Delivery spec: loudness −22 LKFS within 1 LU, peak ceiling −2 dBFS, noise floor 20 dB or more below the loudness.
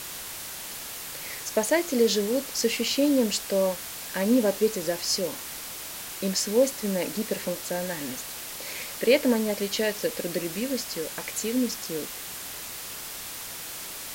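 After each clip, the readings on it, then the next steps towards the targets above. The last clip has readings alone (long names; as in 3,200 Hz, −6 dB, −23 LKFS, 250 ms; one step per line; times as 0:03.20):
background noise floor −38 dBFS; target noise floor −48 dBFS; integrated loudness −27.5 LKFS; sample peak −8.5 dBFS; target loudness −22.0 LKFS
→ broadband denoise 10 dB, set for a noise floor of −38 dBFS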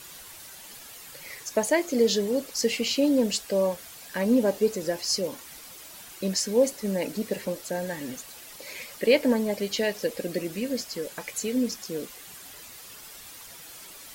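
background noise floor −45 dBFS; target noise floor −47 dBFS
→ broadband denoise 6 dB, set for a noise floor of −45 dBFS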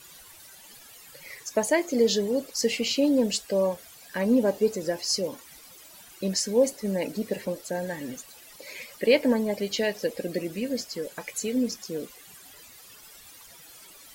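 background noise floor −50 dBFS; integrated loudness −27.0 LKFS; sample peak −9.0 dBFS; target loudness −22.0 LKFS
→ level +5 dB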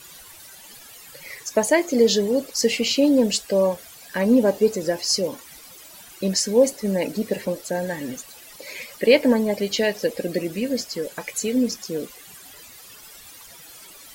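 integrated loudness −22.0 LKFS; sample peak −4.0 dBFS; background noise floor −45 dBFS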